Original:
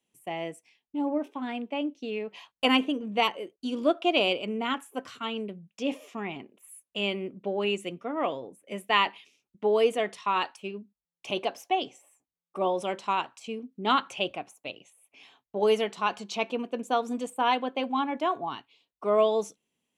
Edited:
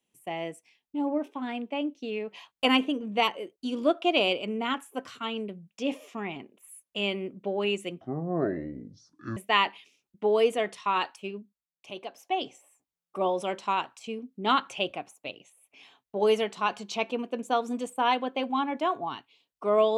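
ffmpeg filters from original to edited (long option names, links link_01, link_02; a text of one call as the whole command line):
ffmpeg -i in.wav -filter_complex "[0:a]asplit=5[link_01][link_02][link_03][link_04][link_05];[link_01]atrim=end=8.014[link_06];[link_02]atrim=start=8.01:end=8.77,asetpts=PTS-STARTPTS,asetrate=24696,aresample=44100[link_07];[link_03]atrim=start=8.766:end=11.08,asetpts=PTS-STARTPTS,afade=type=out:start_time=2.004:duration=0.31:silence=0.334965[link_08];[link_04]atrim=start=11.08:end=11.54,asetpts=PTS-STARTPTS,volume=-9.5dB[link_09];[link_05]atrim=start=11.54,asetpts=PTS-STARTPTS,afade=type=in:duration=0.31:silence=0.334965[link_10];[link_06][link_07]acrossfade=duration=0.004:curve1=hsin:curve2=hsin[link_11];[link_08][link_09][link_10]concat=n=3:v=0:a=1[link_12];[link_11][link_12]acrossfade=duration=0.004:curve1=hsin:curve2=hsin" out.wav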